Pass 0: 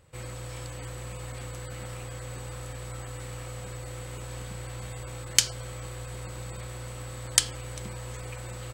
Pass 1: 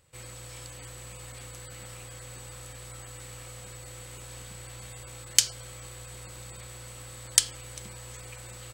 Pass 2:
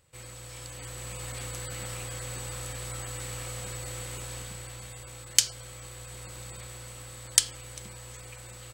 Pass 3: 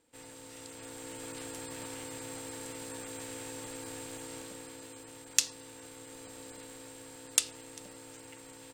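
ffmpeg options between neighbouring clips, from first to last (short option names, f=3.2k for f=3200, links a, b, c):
-af "highshelf=f=2.3k:g=9.5,volume=-7.5dB"
-af "dynaudnorm=f=110:g=17:m=7.5dB,volume=-1dB"
-af "aeval=exprs='val(0)*sin(2*PI*390*n/s)':c=same,volume=-2.5dB"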